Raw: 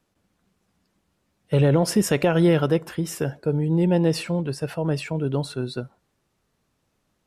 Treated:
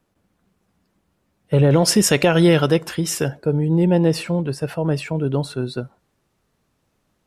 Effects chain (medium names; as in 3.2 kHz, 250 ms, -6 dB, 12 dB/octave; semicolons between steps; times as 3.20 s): peaking EQ 5.4 kHz -5 dB 2.6 oct, from 1.71 s +7.5 dB, from 3.28 s -2 dB; trim +3.5 dB